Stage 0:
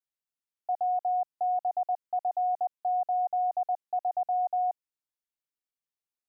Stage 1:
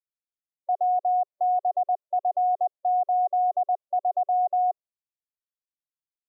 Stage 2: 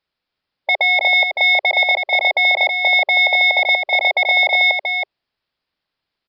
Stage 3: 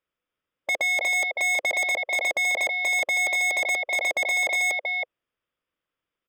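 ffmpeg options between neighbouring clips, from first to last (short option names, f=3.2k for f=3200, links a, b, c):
-af "afftdn=nr=21:nf=-49,tiltshelf=f=640:g=9.5,aecho=1:1:1.7:0.45,volume=4.5dB"
-af "aresample=11025,aeval=exprs='0.119*sin(PI/2*2.82*val(0)/0.119)':c=same,aresample=44100,aecho=1:1:322:0.531,volume=7.5dB"
-af "asuperstop=centerf=4200:order=4:qfactor=3.1,aeval=exprs='0.224*(abs(mod(val(0)/0.224+3,4)-2)-1)':c=same,equalizer=f=315:t=o:w=0.33:g=4,equalizer=f=500:t=o:w=0.33:g=7,equalizer=f=800:t=o:w=0.33:g=-6,equalizer=f=1.25k:t=o:w=0.33:g=5,equalizer=f=5k:t=o:w=0.33:g=-6,volume=-6.5dB"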